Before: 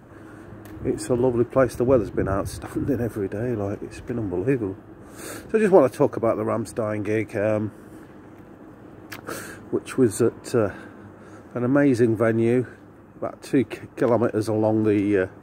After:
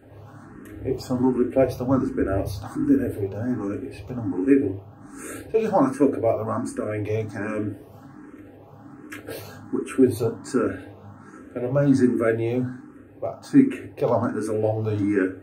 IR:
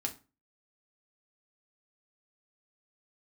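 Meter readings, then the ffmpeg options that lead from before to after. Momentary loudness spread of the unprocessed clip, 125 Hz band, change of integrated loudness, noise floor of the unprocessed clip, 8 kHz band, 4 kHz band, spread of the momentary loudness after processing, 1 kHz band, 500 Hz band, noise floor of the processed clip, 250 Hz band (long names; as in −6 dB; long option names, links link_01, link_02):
16 LU, −0.5 dB, −0.5 dB, −47 dBFS, −3.5 dB, −2.0 dB, 17 LU, −0.5 dB, −2.5 dB, −46 dBFS, +1.0 dB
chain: -filter_complex "[1:a]atrim=start_sample=2205[link_01];[0:a][link_01]afir=irnorm=-1:irlink=0,asplit=2[link_02][link_03];[link_03]afreqshift=1.3[link_04];[link_02][link_04]amix=inputs=2:normalize=1"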